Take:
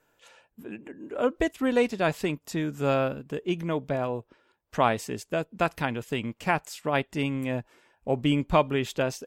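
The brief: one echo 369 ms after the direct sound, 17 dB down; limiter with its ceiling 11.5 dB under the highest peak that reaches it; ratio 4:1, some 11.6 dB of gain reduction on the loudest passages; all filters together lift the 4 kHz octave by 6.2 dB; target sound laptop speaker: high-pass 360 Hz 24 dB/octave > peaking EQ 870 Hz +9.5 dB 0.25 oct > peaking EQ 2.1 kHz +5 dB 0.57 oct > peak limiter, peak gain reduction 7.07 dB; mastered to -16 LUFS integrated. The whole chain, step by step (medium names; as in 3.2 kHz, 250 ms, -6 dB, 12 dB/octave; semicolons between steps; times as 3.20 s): peaking EQ 4 kHz +7.5 dB; compression 4:1, threshold -31 dBFS; peak limiter -28.5 dBFS; high-pass 360 Hz 24 dB/octave; peaking EQ 870 Hz +9.5 dB 0.25 oct; peaking EQ 2.1 kHz +5 dB 0.57 oct; delay 369 ms -17 dB; trim +26.5 dB; peak limiter -4.5 dBFS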